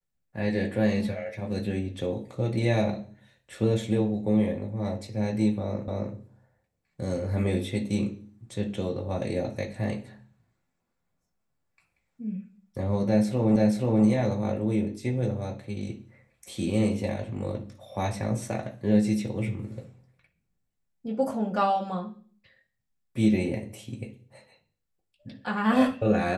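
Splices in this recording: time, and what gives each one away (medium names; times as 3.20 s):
5.88 s: repeat of the last 0.27 s
13.56 s: repeat of the last 0.48 s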